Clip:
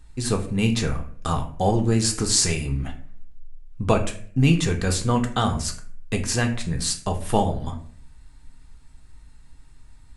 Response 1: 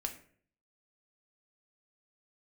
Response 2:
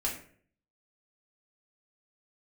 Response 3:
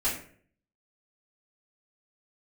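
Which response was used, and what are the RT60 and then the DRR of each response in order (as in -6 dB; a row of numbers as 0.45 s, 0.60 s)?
1; 0.55 s, 0.55 s, 0.55 s; 3.5 dB, -5.0 dB, -13.0 dB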